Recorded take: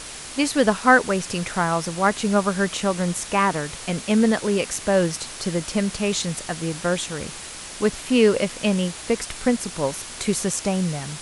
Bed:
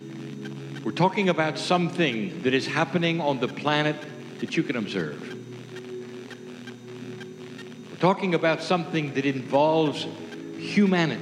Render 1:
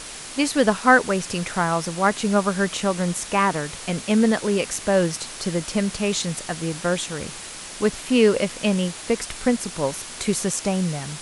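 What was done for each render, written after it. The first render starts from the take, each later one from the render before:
hum removal 60 Hz, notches 2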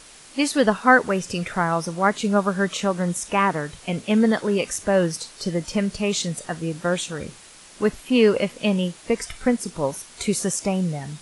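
noise reduction from a noise print 10 dB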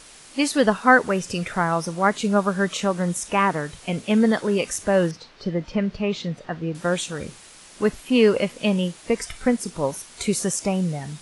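0:05.11–0:06.75: high-frequency loss of the air 240 metres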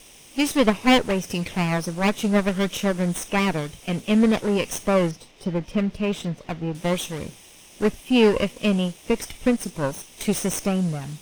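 lower of the sound and its delayed copy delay 0.33 ms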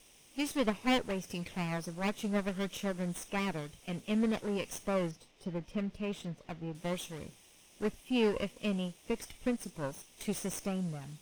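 level −12.5 dB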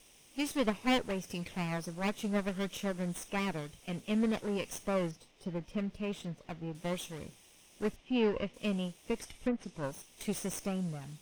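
0:07.96–0:08.54: high-frequency loss of the air 150 metres
0:09.20–0:09.83: treble cut that deepens with the level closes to 1,800 Hz, closed at −27.5 dBFS

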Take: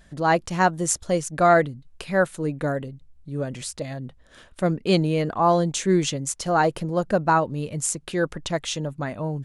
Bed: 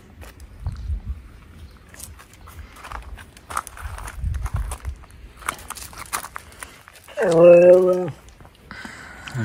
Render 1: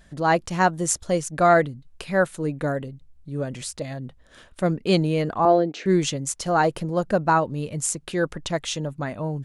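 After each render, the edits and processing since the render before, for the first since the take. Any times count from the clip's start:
0:05.45–0:05.86: loudspeaker in its box 260–4,000 Hz, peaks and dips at 300 Hz +8 dB, 430 Hz +7 dB, 700 Hz +4 dB, 1,000 Hz −10 dB, 3,400 Hz −9 dB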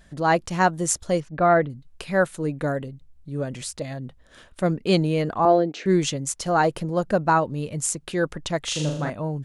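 0:01.20–0:01.70: high-frequency loss of the air 370 metres
0:08.63–0:09.10: flutter between parallel walls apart 6.8 metres, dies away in 0.69 s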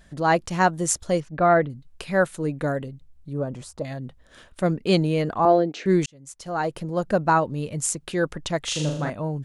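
0:03.33–0:03.85: high shelf with overshoot 1,500 Hz −9.5 dB, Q 1.5
0:06.06–0:07.16: fade in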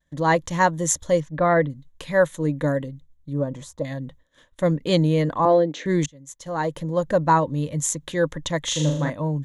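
downward expander −41 dBFS
EQ curve with evenly spaced ripples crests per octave 1.1, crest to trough 9 dB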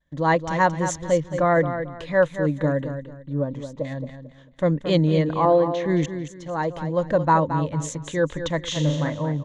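high-frequency loss of the air 110 metres
on a send: repeating echo 222 ms, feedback 28%, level −9.5 dB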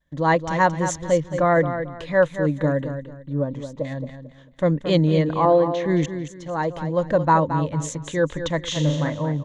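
level +1 dB

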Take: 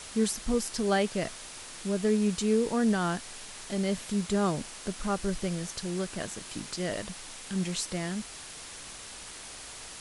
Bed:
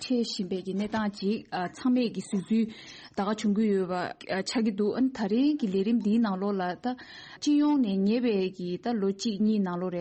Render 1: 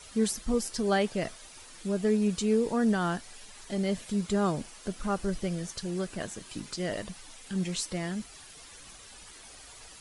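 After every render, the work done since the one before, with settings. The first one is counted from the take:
broadband denoise 10 dB, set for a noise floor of −45 dBFS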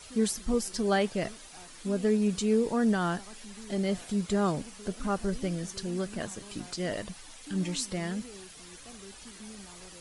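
mix in bed −22 dB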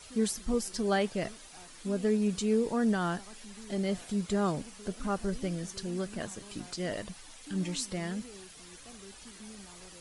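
level −2 dB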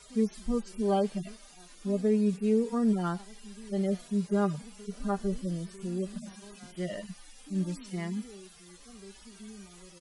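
harmonic-percussive split with one part muted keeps harmonic
comb filter 5 ms, depth 34%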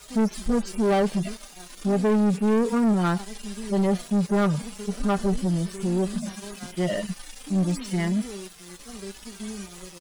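leveller curve on the samples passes 3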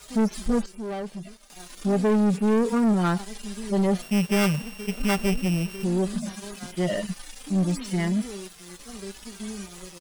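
0:00.66–0:01.50: clip gain −11 dB
0:04.02–0:05.84: samples sorted by size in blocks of 16 samples

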